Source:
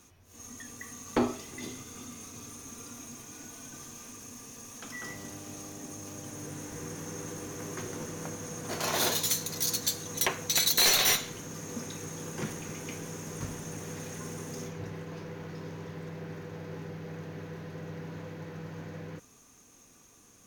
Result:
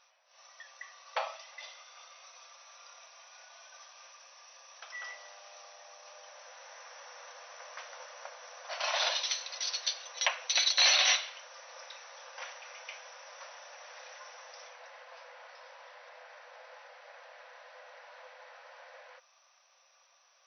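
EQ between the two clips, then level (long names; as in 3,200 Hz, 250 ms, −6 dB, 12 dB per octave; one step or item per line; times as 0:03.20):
dynamic equaliser 2,800 Hz, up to +6 dB, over −49 dBFS, Q 2
linear-phase brick-wall band-pass 510–6,100 Hz
−1.5 dB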